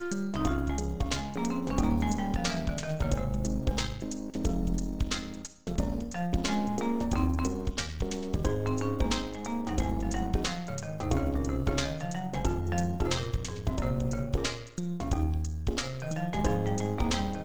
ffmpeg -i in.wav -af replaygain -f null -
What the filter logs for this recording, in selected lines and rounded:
track_gain = +13.7 dB
track_peak = 0.163